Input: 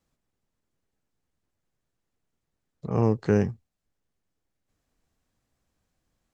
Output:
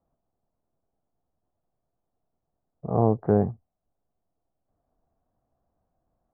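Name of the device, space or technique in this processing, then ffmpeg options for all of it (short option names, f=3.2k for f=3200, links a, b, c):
under water: -af "lowpass=f=1.2k:w=0.5412,lowpass=f=1.2k:w=1.3066,equalizer=f=690:t=o:w=0.45:g=11"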